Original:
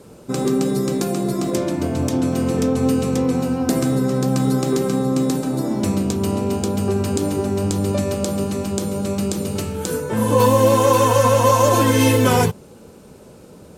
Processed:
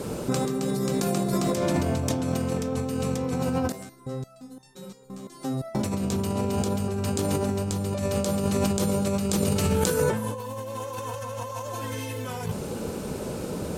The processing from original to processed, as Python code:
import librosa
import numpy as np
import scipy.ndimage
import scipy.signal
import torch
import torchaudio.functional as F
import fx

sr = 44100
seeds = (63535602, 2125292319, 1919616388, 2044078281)

y = fx.dynamic_eq(x, sr, hz=310.0, q=2.4, threshold_db=-35.0, ratio=4.0, max_db=-8)
y = fx.over_compress(y, sr, threshold_db=-30.0, ratio=-1.0)
y = fx.resonator_held(y, sr, hz=5.8, low_hz=96.0, high_hz=900.0, at=(3.72, 5.75))
y = y * 10.0 ** (2.5 / 20.0)